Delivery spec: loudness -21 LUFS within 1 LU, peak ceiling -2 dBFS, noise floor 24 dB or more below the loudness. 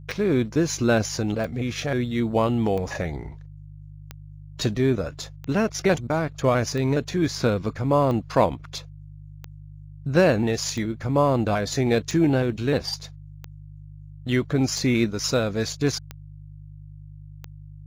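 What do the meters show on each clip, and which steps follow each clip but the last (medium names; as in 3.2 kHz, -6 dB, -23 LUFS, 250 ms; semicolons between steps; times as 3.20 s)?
clicks found 14; hum 50 Hz; highest harmonic 150 Hz; hum level -40 dBFS; loudness -23.5 LUFS; peak level -6.5 dBFS; loudness target -21.0 LUFS
-> de-click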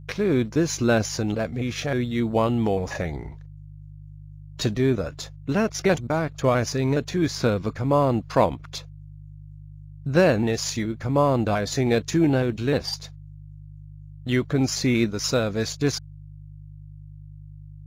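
clicks found 0; hum 50 Hz; highest harmonic 150 Hz; hum level -40 dBFS
-> de-hum 50 Hz, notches 3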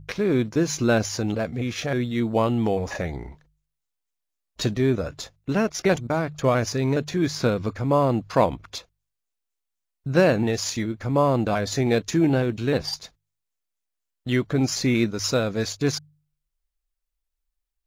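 hum not found; loudness -24.0 LUFS; peak level -6.5 dBFS; loudness target -21.0 LUFS
-> trim +3 dB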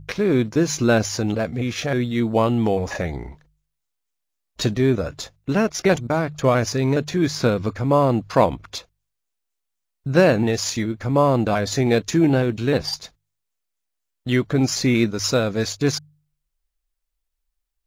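loudness -21.0 LUFS; peak level -3.5 dBFS; noise floor -79 dBFS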